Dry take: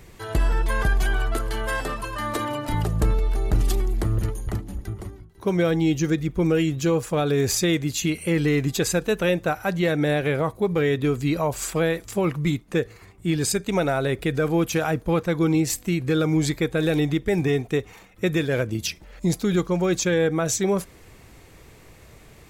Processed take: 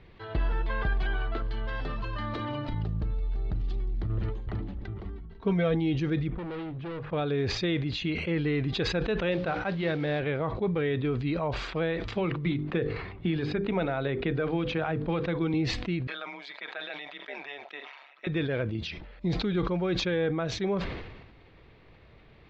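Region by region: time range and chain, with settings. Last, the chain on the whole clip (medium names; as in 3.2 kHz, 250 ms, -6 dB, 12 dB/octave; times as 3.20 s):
1.42–4.10 s: tone controls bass +9 dB, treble +8 dB + compression 5:1, threshold -21 dBFS
5.03–5.75 s: bass shelf 120 Hz +7.5 dB + comb 4.4 ms, depth 63%
6.30–7.13 s: low-pass 1.9 kHz + hum notches 50/100/150 Hz + hard clipper -27.5 dBFS
9.31–10.20 s: hum notches 60/120/180/240/300/360/420/480/540 Hz + modulation noise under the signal 17 dB
12.15–15.54 s: distance through air 84 m + hum notches 50/100/150/200/250/300/350/400/450/500 Hz + three bands compressed up and down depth 100%
16.07–18.27 s: high-pass 640 Hz 24 dB/octave + comb 3.1 ms, depth 62% + AM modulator 140 Hz, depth 70%
whole clip: steep low-pass 4.1 kHz 36 dB/octave; decay stretcher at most 47 dB/s; trim -7 dB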